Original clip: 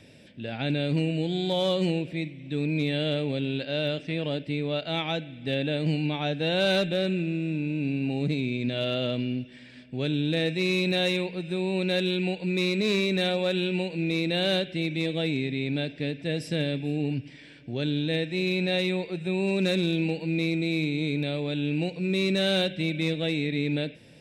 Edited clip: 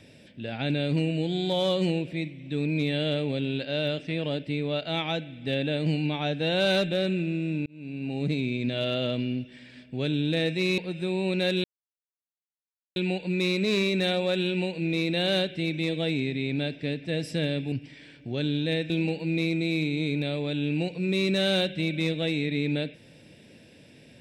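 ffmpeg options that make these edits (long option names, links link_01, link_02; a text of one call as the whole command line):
ffmpeg -i in.wav -filter_complex "[0:a]asplit=6[link_01][link_02][link_03][link_04][link_05][link_06];[link_01]atrim=end=7.66,asetpts=PTS-STARTPTS,afade=type=out:start_time=7.656:duration=0.004:curve=hsin[link_07];[link_02]atrim=start=7.66:end=10.782,asetpts=PTS-STARTPTS,afade=type=in:duration=0.65[link_08];[link_03]atrim=start=11.268:end=12.13,asetpts=PTS-STARTPTS,afade=type=out:start_time=0.858:duration=0.004:curve=hsin,apad=pad_dur=1.32[link_09];[link_04]atrim=start=12.13:end=16.892,asetpts=PTS-STARTPTS,afade=type=in:duration=0.004:curve=hsin[link_10];[link_05]atrim=start=17.138:end=18.322[link_11];[link_06]atrim=start=19.908[link_12];[link_07][link_08]concat=n=2:v=0:a=1[link_13];[link_09][link_10]concat=n=2:v=0:a=1[link_14];[link_13][link_14]acrossfade=duration=0.004:curve1=hsin:curve2=hsin[link_15];[link_15][link_11]acrossfade=duration=0.004:curve1=hsin:curve2=hsin[link_16];[link_16][link_12]acrossfade=duration=0.004:curve1=hsin:curve2=hsin" out.wav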